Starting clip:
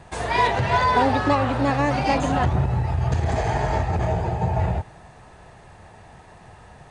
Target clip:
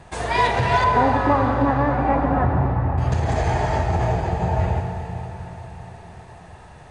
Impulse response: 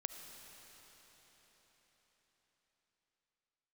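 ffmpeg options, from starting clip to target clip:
-filter_complex "[0:a]asettb=1/sr,asplit=3[s0][s1][s2];[s0]atrim=end=0.844[s3];[s1]atrim=start=0.84:end=2.98,asetpts=PTS-STARTPTS,afade=t=in:d=0.004:c=qsin,afade=t=out:st=2.136:d=0.004:c=qsin,lowpass=f=1700:w=0.5412,lowpass=f=1700:w=1.3066[s4];[s2]atrim=start=2.976[s5];[s3][s4]acrossfade=d=0.004:c1=hsin:c2=qsin[s6];[s6][s5]acrossfade=d=0.004:c1=qsin:c2=hsin[s7];[1:a]atrim=start_sample=2205,asetrate=48510,aresample=44100[s8];[s7][s8]afir=irnorm=-1:irlink=0,volume=1.68"

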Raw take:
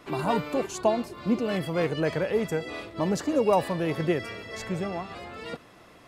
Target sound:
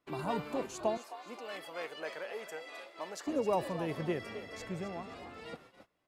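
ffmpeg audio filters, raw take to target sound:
-filter_complex "[0:a]asplit=5[s0][s1][s2][s3][s4];[s1]adelay=263,afreqshift=64,volume=0.251[s5];[s2]adelay=526,afreqshift=128,volume=0.0955[s6];[s3]adelay=789,afreqshift=192,volume=0.0363[s7];[s4]adelay=1052,afreqshift=256,volume=0.0138[s8];[s0][s5][s6][s7][s8]amix=inputs=5:normalize=0,agate=range=0.1:threshold=0.00501:ratio=16:detection=peak,asettb=1/sr,asplit=3[s9][s10][s11];[s9]atrim=end=0.974[s12];[s10]atrim=start=0.97:end=3.27,asetpts=PTS-STARTPTS,afade=t=in:d=0.004:c=qsin,afade=t=out:st=2.296:d=0.004:c=qsin,highpass=680[s13];[s11]atrim=start=3.266[s14];[s12][s13]acrossfade=d=0.004:c1=hsin:c2=qsin[s15];[s15][s14]acrossfade=d=0.004:c1=qsin:c2=hsin,volume=0.355"

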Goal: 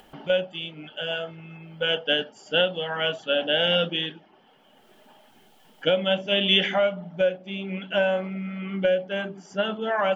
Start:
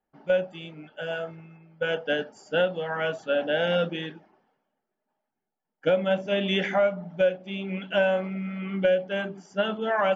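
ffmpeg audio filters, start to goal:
-af "asetnsamples=n=441:p=0,asendcmd='7.09 equalizer g 3',equalizer=f=3100:t=o:w=0.44:g=14.5,acompressor=mode=upward:threshold=0.0251:ratio=2.5"

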